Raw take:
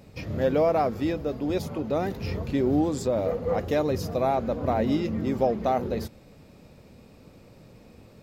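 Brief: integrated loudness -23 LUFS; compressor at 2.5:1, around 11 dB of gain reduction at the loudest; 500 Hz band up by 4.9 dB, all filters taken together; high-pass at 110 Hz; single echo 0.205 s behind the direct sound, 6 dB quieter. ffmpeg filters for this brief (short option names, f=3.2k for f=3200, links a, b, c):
-af "highpass=110,equalizer=f=500:t=o:g=6,acompressor=threshold=-31dB:ratio=2.5,aecho=1:1:205:0.501,volume=7.5dB"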